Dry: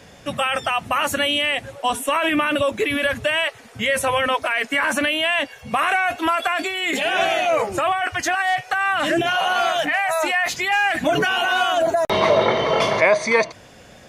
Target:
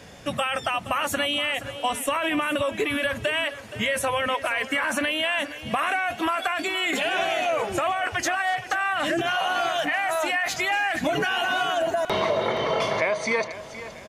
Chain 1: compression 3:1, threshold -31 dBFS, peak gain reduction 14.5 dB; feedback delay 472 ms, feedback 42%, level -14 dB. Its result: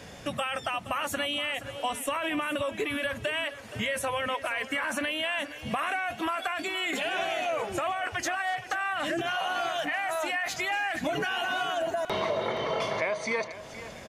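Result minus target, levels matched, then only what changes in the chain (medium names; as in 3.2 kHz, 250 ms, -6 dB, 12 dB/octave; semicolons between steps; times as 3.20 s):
compression: peak gain reduction +5.5 dB
change: compression 3:1, threshold -23 dBFS, peak gain reduction 9.5 dB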